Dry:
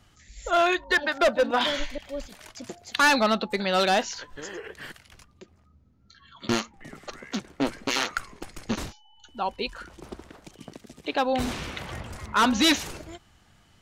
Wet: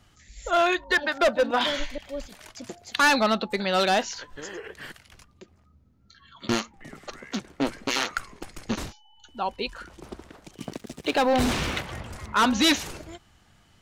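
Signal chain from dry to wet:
0:10.57–0:11.81: leveller curve on the samples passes 2

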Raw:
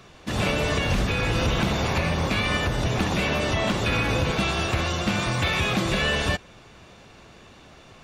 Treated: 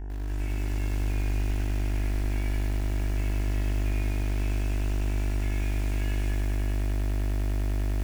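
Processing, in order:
delay that swaps between a low-pass and a high-pass 290 ms, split 910 Hz, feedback 64%, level −5.5 dB
in parallel at −9 dB: soft clipping −20.5 dBFS, distortion −13 dB
on the sum: low-shelf EQ 89 Hz −11.5 dB
frequency shifter −62 Hz
guitar amp tone stack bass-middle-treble 6-0-2
hum with harmonics 50 Hz, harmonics 37, −32 dBFS −8 dB per octave
phaser with its sweep stopped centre 800 Hz, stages 8
on a send: bucket-brigade delay 369 ms, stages 4,096, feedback 78%, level −18 dB
on the sum: feedback echo at a low word length 100 ms, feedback 80%, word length 7 bits, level −5 dB
level −1 dB

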